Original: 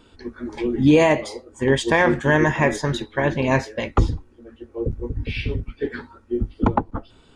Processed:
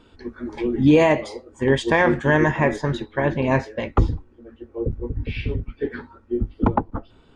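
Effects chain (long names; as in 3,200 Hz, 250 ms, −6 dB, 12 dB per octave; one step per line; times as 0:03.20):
low-pass filter 3,900 Hz 6 dB per octave, from 0:02.51 2,200 Hz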